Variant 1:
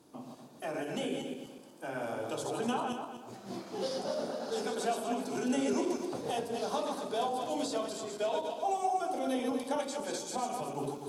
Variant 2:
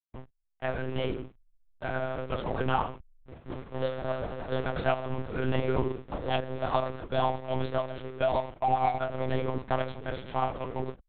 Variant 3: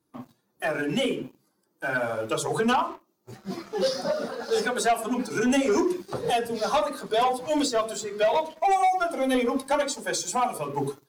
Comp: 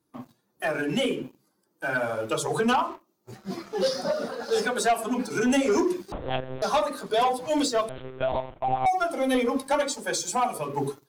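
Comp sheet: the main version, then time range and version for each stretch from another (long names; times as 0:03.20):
3
0:06.12–0:06.62: punch in from 2
0:07.89–0:08.86: punch in from 2
not used: 1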